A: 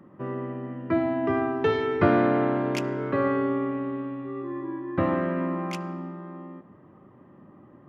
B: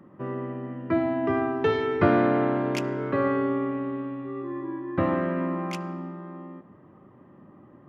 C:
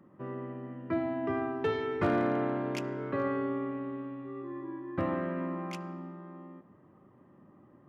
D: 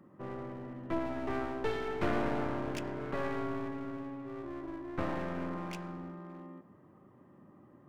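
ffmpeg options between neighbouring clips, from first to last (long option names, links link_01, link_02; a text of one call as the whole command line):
ffmpeg -i in.wav -af anull out.wav
ffmpeg -i in.wav -af "asoftclip=type=hard:threshold=-14dB,volume=-7dB" out.wav
ffmpeg -i in.wav -af "aeval=exprs='clip(val(0),-1,0.00708)':channel_layout=same" out.wav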